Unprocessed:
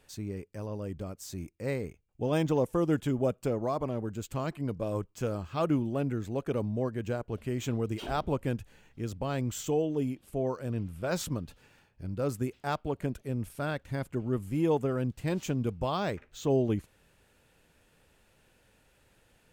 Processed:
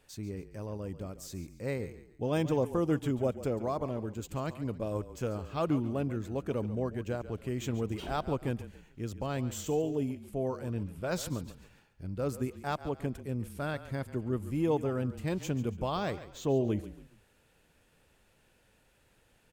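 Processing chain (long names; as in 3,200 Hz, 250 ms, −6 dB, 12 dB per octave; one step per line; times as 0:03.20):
echo with shifted repeats 140 ms, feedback 36%, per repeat −31 Hz, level −14 dB
level −2 dB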